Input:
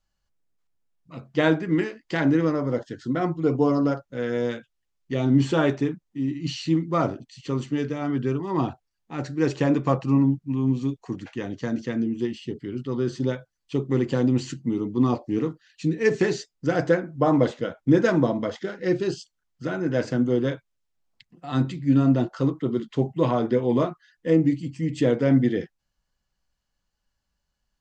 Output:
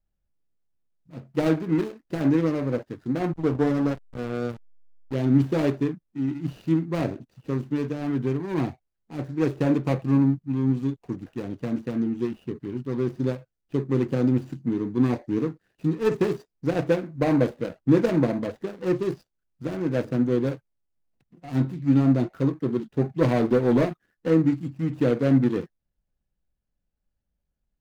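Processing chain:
running median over 41 samples
0:03.33–0:05.14: slack as between gear wheels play −28 dBFS
0:23.21–0:24.29: leveller curve on the samples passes 1

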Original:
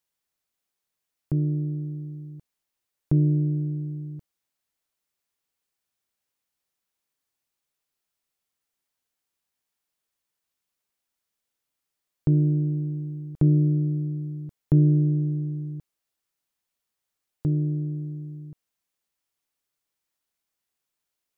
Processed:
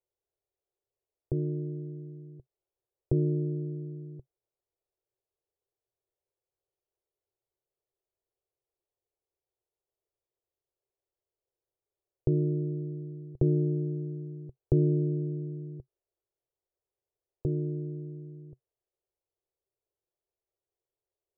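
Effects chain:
drawn EQ curve 130 Hz 0 dB, 220 Hz −29 dB, 370 Hz +7 dB, 580 Hz +2 dB, 1,700 Hz −21 dB

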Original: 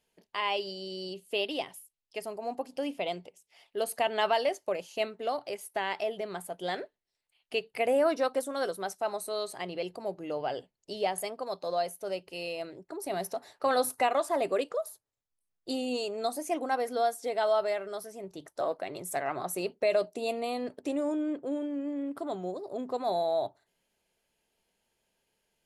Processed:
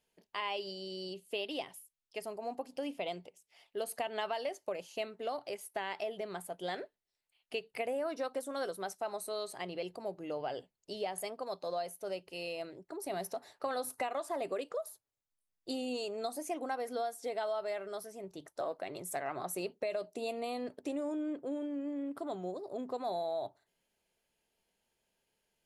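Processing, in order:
downward compressor, threshold −29 dBFS, peak gain reduction 8 dB
level −3.5 dB

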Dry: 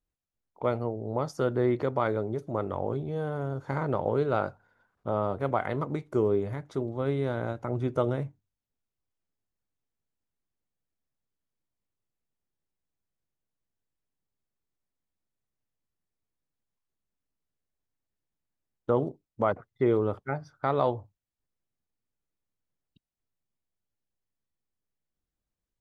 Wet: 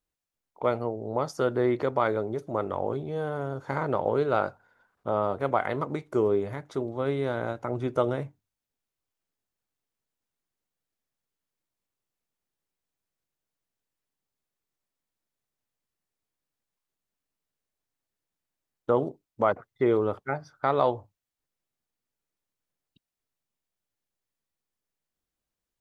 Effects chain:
low-shelf EQ 230 Hz −8.5 dB
level +3.5 dB

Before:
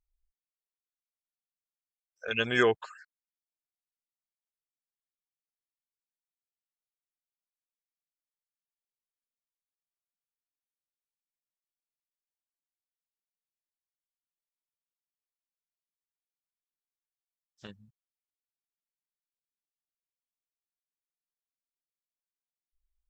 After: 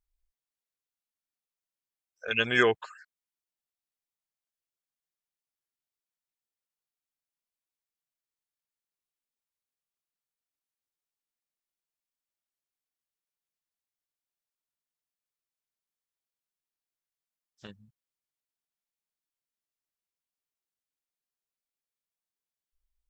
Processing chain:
dynamic equaliser 2,200 Hz, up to +4 dB, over −40 dBFS, Q 0.97

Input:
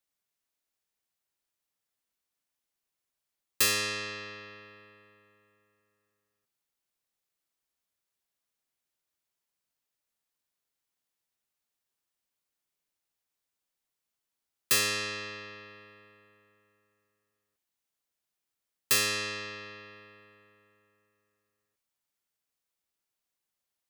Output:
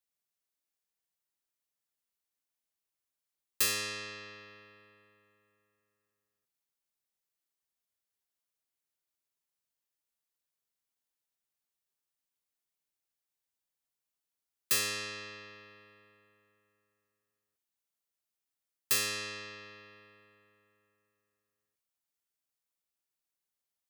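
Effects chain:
high-shelf EQ 6,300 Hz +4 dB
level −6 dB

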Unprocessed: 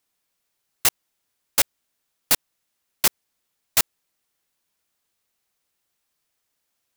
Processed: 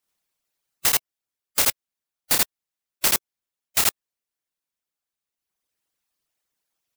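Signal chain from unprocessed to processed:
reverb reduction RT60 1.8 s
loudspeakers that aren't time-aligned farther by 11 metres −3 dB, 28 metres 0 dB
harmonic and percussive parts rebalanced harmonic −15 dB

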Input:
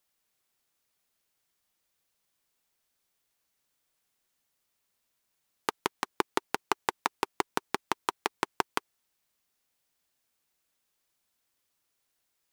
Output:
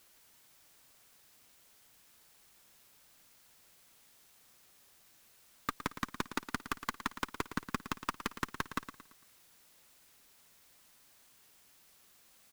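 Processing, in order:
running median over 15 samples
flat-topped bell 560 Hz −14.5 dB
in parallel at −1 dB: output level in coarse steps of 21 dB
on the sum: asymmetric clip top −22.5 dBFS
bit-depth reduction 12 bits, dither triangular
soft clipping −31 dBFS, distortion −4 dB
on a send: repeating echo 113 ms, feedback 41%, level −12 dB
on the sum: level +8 dB

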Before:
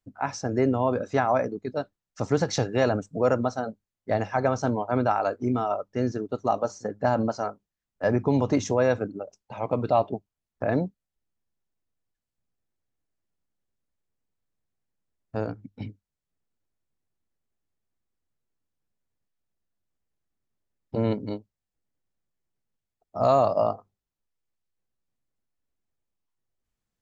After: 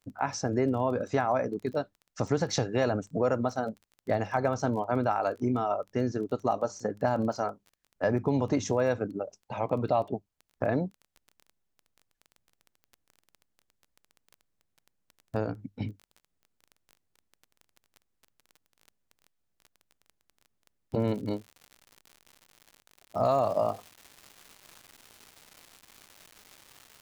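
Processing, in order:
downward compressor 2 to 1, threshold −30 dBFS, peak gain reduction 8 dB
surface crackle 16 per second −42 dBFS, from 0:21.00 140 per second, from 0:23.31 540 per second
level +2.5 dB

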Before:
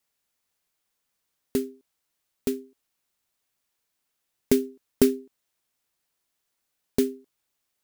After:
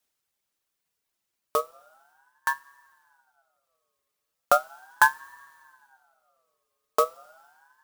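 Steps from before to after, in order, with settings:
reverb reduction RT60 1.5 s
coupled-rooms reverb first 0.28 s, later 2.5 s, from −18 dB, DRR 12 dB
ring modulator whose carrier an LFO sweeps 1,100 Hz, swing 25%, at 0.37 Hz
level +3 dB

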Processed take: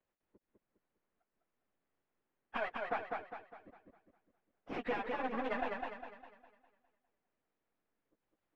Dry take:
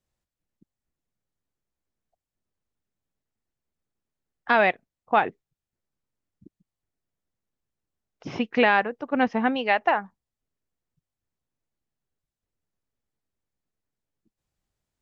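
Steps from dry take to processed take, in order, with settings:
downward compressor 5 to 1, threshold −33 dBFS, peak gain reduction 16.5 dB
half-wave rectification
three-way crossover with the lows and the highs turned down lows −14 dB, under 230 Hz, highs −23 dB, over 2,800 Hz
time stretch by phase vocoder 0.57×
feedback echo with a swinging delay time 203 ms, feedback 43%, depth 66 cents, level −3.5 dB
level +8 dB

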